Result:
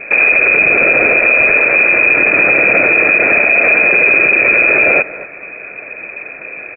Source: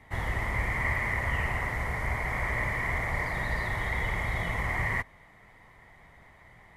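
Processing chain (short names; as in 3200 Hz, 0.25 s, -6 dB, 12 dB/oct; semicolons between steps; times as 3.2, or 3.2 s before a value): low shelf 290 Hz +8 dB; notch 960 Hz, Q 13; speakerphone echo 0.23 s, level -21 dB; inverted band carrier 2500 Hz; maximiser +22 dB; gain -1 dB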